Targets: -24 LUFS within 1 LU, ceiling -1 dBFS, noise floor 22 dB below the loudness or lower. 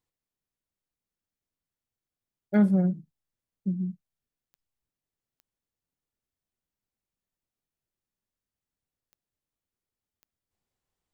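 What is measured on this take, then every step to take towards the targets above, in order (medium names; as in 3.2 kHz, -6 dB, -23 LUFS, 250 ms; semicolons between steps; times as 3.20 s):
clicks found 5; loudness -26.5 LUFS; peak level -12.5 dBFS; loudness target -24.0 LUFS
-> de-click; trim +2.5 dB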